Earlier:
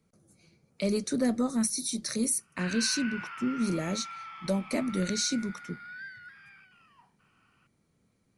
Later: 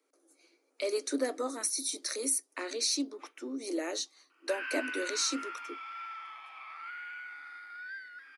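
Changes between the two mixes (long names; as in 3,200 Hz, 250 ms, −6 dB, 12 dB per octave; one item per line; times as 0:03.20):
background: entry +1.90 s
master: add Chebyshev high-pass filter 270 Hz, order 8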